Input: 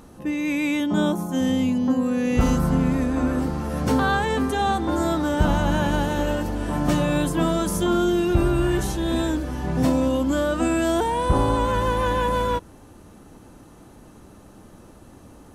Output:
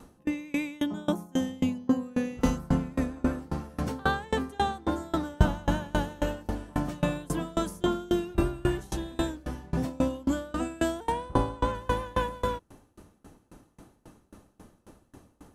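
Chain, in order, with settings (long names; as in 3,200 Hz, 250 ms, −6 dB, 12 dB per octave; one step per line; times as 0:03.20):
0:11.12–0:11.75: high-shelf EQ 9,000 Hz −9.5 dB
tremolo with a ramp in dB decaying 3.7 Hz, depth 28 dB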